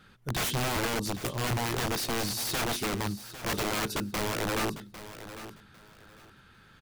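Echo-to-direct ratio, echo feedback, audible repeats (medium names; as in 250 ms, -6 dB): -13.5 dB, 22%, 2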